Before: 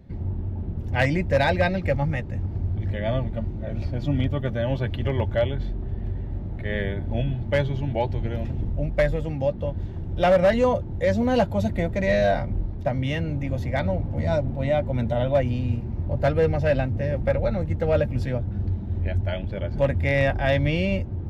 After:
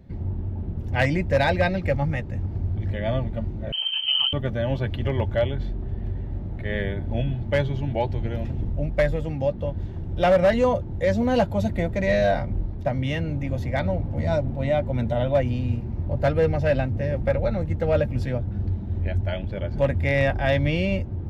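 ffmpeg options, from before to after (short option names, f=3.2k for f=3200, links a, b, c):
-filter_complex "[0:a]asettb=1/sr,asplit=3[a][b][c];[a]atrim=end=3.724[d];[b]atrim=start=3.72:end=4.33,asetpts=PTS-STARTPTS,afade=t=in:d=0.004:c=qsin,afade=t=out:st=0.606:d=0.004:c=qsin,lowpass=f=2.7k:t=q:w=0.5098,lowpass=f=2.7k:t=q:w=0.6013,lowpass=f=2.7k:t=q:w=0.9,lowpass=f=2.7k:t=q:w=2.563,afreqshift=-3200[e];[c]atrim=start=4.326[f];[d][e]acrossfade=d=0.004:c1=hsin:c2=qsin[g];[g][f]acrossfade=d=0.004:c1=qsin:c2=hsin"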